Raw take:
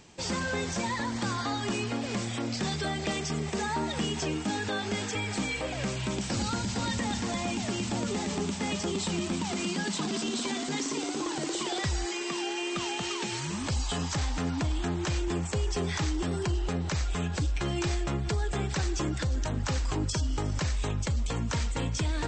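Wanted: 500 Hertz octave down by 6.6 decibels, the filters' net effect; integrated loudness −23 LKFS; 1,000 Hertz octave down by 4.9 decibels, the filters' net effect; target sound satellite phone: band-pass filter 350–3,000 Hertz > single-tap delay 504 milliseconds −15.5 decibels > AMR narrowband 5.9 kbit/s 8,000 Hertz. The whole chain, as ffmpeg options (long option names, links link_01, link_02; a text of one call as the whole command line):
ffmpeg -i in.wav -af "highpass=350,lowpass=3000,equalizer=frequency=500:width_type=o:gain=-6,equalizer=frequency=1000:width_type=o:gain=-4,aecho=1:1:504:0.168,volume=19dB" -ar 8000 -c:a libopencore_amrnb -b:a 5900 out.amr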